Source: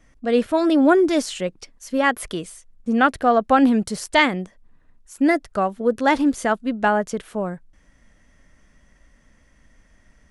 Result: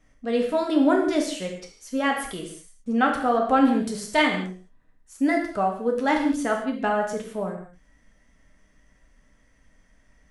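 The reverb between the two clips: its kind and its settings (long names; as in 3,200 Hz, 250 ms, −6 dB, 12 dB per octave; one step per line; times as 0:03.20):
reverb whose tail is shaped and stops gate 240 ms falling, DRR 0.5 dB
level −6.5 dB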